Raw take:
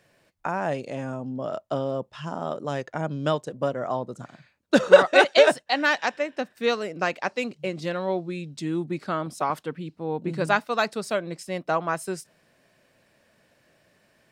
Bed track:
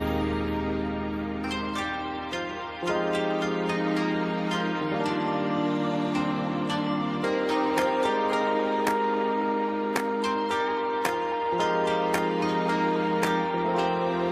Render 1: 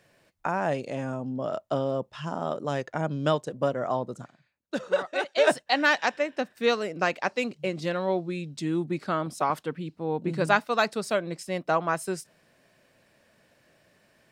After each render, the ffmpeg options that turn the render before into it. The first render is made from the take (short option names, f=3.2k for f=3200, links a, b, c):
-filter_complex "[0:a]asplit=3[a][b][c];[a]atrim=end=4.33,asetpts=PTS-STARTPTS,afade=t=out:st=4.17:d=0.16:silence=0.237137[d];[b]atrim=start=4.33:end=5.36,asetpts=PTS-STARTPTS,volume=-12.5dB[e];[c]atrim=start=5.36,asetpts=PTS-STARTPTS,afade=t=in:d=0.16:silence=0.237137[f];[d][e][f]concat=n=3:v=0:a=1"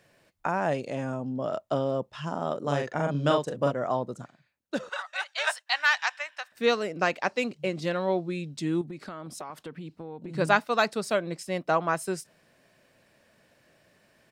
-filter_complex "[0:a]asplit=3[a][b][c];[a]afade=t=out:st=2.62:d=0.02[d];[b]asplit=2[e][f];[f]adelay=42,volume=-3dB[g];[e][g]amix=inputs=2:normalize=0,afade=t=in:st=2.62:d=0.02,afade=t=out:st=3.7:d=0.02[h];[c]afade=t=in:st=3.7:d=0.02[i];[d][h][i]amix=inputs=3:normalize=0,asettb=1/sr,asplit=3[j][k][l];[j]atrim=end=4.894[m];[k]atrim=start=4.89:end=6.52,asetpts=PTS-STARTPTS,afade=t=in:d=0.004:c=qsin,afade=t=out:st=1.626:d=0.004:c=qsin,highpass=f=940:w=0.5412,highpass=f=940:w=1.3066[n];[l]atrim=start=6.516[o];[m][n]acrossfade=d=0.004:c1=hsin:c2=qsin[p];[p][o]acrossfade=d=0.004:c1=qsin:c2=hsin,asettb=1/sr,asplit=3[q][r][s];[q]atrim=end=8.814[t];[r]atrim=start=8.81:end=10.35,asetpts=PTS-STARTPTS,afade=t=in:d=0.004:c=qsin,afade=t=out:st=1.536:d=0.004:c=qsin,acompressor=threshold=-35dB:ratio=8:attack=3.2:release=140:knee=1:detection=peak[u];[s]atrim=start=10.346[v];[t][u]acrossfade=d=0.004:c1=hsin:c2=qsin[w];[w][v]acrossfade=d=0.004:c1=qsin:c2=hsin"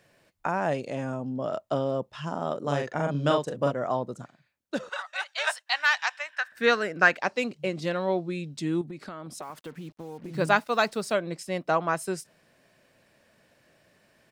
-filter_complex "[0:a]asettb=1/sr,asplit=3[a][b][c];[a]atrim=end=6.334[d];[b]atrim=start=6.33:end=7.17,asetpts=PTS-STARTPTS,afade=t=in:d=0.004:c=qsin,afade=t=out:st=0.836:d=0.004:c=qsin,equalizer=f=1.6k:w=2.7:g=13[e];[c]atrim=start=7.166[f];[d][e]acrossfade=d=0.004:c1=hsin:c2=qsin[g];[g][f]acrossfade=d=0.004:c1=qsin:c2=hsin,asettb=1/sr,asplit=3[h][i][j];[h]atrim=end=9.424[k];[i]atrim=start=9.42:end=11.12,asetpts=PTS-STARTPTS,afade=t=in:d=0.004:c=qsin,afade=t=out:st=1.696:d=0.004:c=qsin,acrusher=bits=8:mix=0:aa=0.5[l];[j]atrim=start=11.116[m];[k][l]acrossfade=d=0.004:c1=hsin:c2=qsin[n];[n][m]acrossfade=d=0.004:c1=qsin:c2=hsin"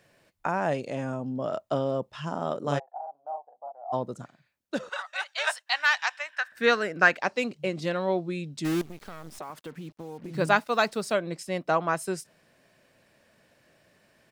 -filter_complex "[0:a]asplit=3[a][b][c];[a]afade=t=out:st=2.78:d=0.02[d];[b]asuperpass=centerf=770:order=4:qfactor=5.4,afade=t=in:st=2.78:d=0.02,afade=t=out:st=3.92:d=0.02[e];[c]afade=t=in:st=3.92:d=0.02[f];[d][e][f]amix=inputs=3:normalize=0,asplit=3[g][h][i];[g]afade=t=out:st=8.64:d=0.02[j];[h]acrusher=bits=6:dc=4:mix=0:aa=0.000001,afade=t=in:st=8.64:d=0.02,afade=t=out:st=9.38:d=0.02[k];[i]afade=t=in:st=9.38:d=0.02[l];[j][k][l]amix=inputs=3:normalize=0"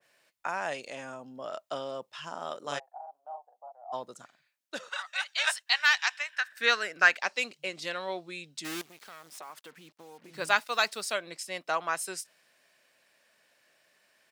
-af "highpass=f=1.4k:p=1,adynamicequalizer=threshold=0.01:dfrequency=1800:dqfactor=0.7:tfrequency=1800:tqfactor=0.7:attack=5:release=100:ratio=0.375:range=2:mode=boostabove:tftype=highshelf"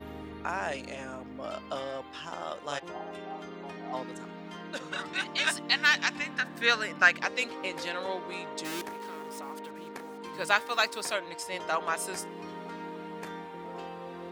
-filter_complex "[1:a]volume=-15.5dB[a];[0:a][a]amix=inputs=2:normalize=0"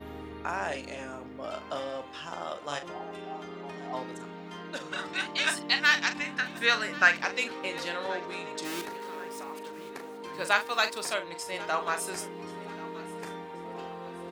-filter_complex "[0:a]asplit=2[a][b];[b]adelay=41,volume=-10dB[c];[a][c]amix=inputs=2:normalize=0,aecho=1:1:1082|2164|3246:0.106|0.0413|0.0161"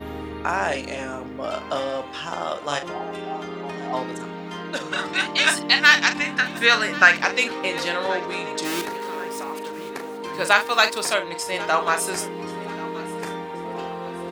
-af "volume=9dB,alimiter=limit=-1dB:level=0:latency=1"